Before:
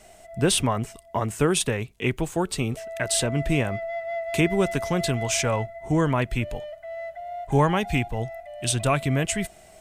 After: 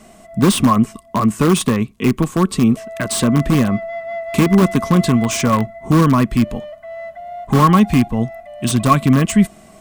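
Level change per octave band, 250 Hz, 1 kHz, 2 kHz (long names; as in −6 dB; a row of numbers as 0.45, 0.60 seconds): +13.5, +9.5, +3.0 decibels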